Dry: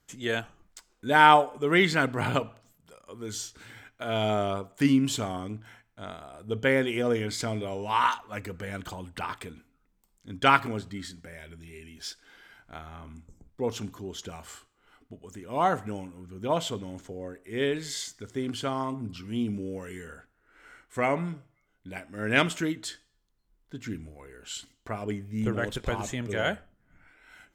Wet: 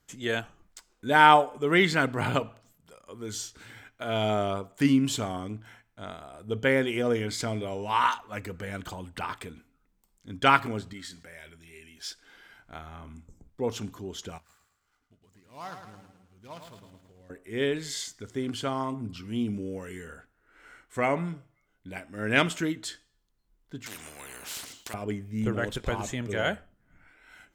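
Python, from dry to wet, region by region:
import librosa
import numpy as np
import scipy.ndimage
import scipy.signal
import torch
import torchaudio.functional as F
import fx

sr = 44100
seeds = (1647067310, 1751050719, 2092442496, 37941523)

y = fx.chain(x, sr, fx.low_shelf(hz=420.0, db=-9.5),
    fx.sustainer(db_per_s=110.0), at=(10.93, 12.1))
y = fx.chain(y, sr, fx.median_filter(points=15),
    fx.tone_stack(knobs='5-5-5'),
    fx.echo_feedback(ms=108, feedback_pct=48, wet_db=-7), at=(14.38, 17.3))
y = fx.chain(y, sr, fx.highpass(hz=480.0, slope=6),
    fx.spectral_comp(ratio=4.0), at=(23.86, 24.94))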